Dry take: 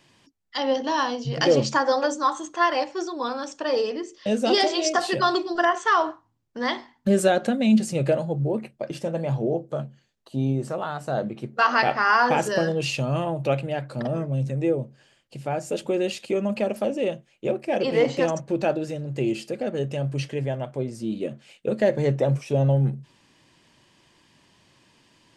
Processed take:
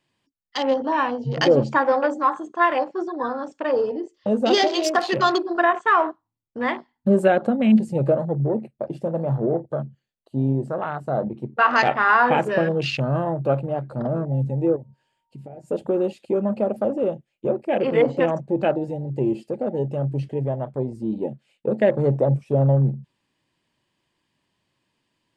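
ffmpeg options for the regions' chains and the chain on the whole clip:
-filter_complex "[0:a]asettb=1/sr,asplit=3[a][b][c];[a]atrim=end=14.764[d];[b]atrim=start=14.76:end=15.68,asetpts=PTS-STARTPTS,afade=t=in:d=0.004:c=qsin,afade=t=out:st=0.916:d=0.004:c=qsin,acompressor=threshold=-38dB:ratio=4:attack=3.2:release=140:knee=1:detection=peak,aeval=exprs='val(0)+0.001*sin(2*PI*930*n/s)':c=same[e];[c]atrim=start=15.676[f];[d][e]acrossfade=d=0.004:c1=hsin:c2=qsin[g];[g][f]acrossfade=d=0.004:c1=qsin:c2=hsin,afwtdn=0.0224,equalizer=f=5.9k:w=3.2:g=-6.5,volume=2.5dB"

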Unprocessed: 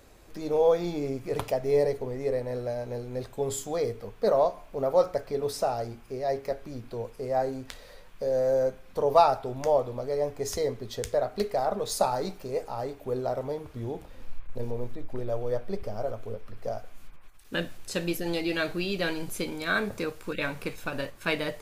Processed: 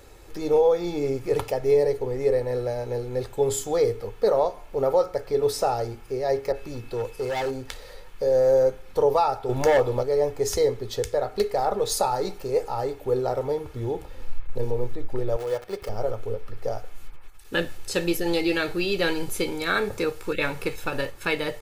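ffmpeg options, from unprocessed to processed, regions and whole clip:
-filter_complex "[0:a]asettb=1/sr,asplit=3[a][b][c];[a]atrim=end=6.524[d];[b]atrim=start=6.52:end=7.51,asetpts=PTS-STARTPTS,afade=t=in:d=0.004:c=qsin,afade=t=out:st=0.986:d=0.004:c=qsin,asoftclip=type=hard:threshold=-30dB,aeval=exprs='val(0)+0.000708*sin(2*PI*2600*n/s)':c=same,adynamicequalizer=threshold=0.00355:dfrequency=2000:dqfactor=0.7:tfrequency=2000:tqfactor=0.7:attack=5:release=100:ratio=0.375:range=2:mode=boostabove:tftype=highshelf[e];[c]atrim=start=7.506[f];[d][e]acrossfade=d=0.004:c1=hsin:c2=qsin[g];[g][f]acrossfade=d=0.004:c1=qsin:c2=hsin,asettb=1/sr,asplit=3[h][i][j];[h]atrim=end=9.494[k];[i]atrim=start=9.49:end=10.03,asetpts=PTS-STARTPTS,afade=t=in:d=0.004:c=qsin,afade=t=out:st=0.536:d=0.004:c=qsin,acontrast=58,asoftclip=type=hard:threshold=-16dB[l];[j]atrim=start=10.026[m];[k][l]acrossfade=d=0.004:c1=hsin:c2=qsin[n];[n][m]acrossfade=d=0.004:c1=qsin:c2=hsin,asettb=1/sr,asplit=3[o][p][q];[o]atrim=end=15.364[r];[p]atrim=start=15.36:end=15.89,asetpts=PTS-STARTPTS,afade=t=in:d=0.004:c=qsin,afade=t=out:st=0.526:d=0.004:c=qsin,aeval=exprs='val(0)+0.5*0.0126*sgn(val(0))':c=same,highpass=f=43:p=1,lowshelf=f=400:g=-11[s];[q]atrim=start=15.886[t];[r][s]acrossfade=d=0.004:c1=hsin:c2=qsin[u];[u][t]acrossfade=d=0.004:c1=qsin:c2=hsin,aecho=1:1:2.3:0.46,alimiter=limit=-16dB:level=0:latency=1:release=418,volume=4.5dB"

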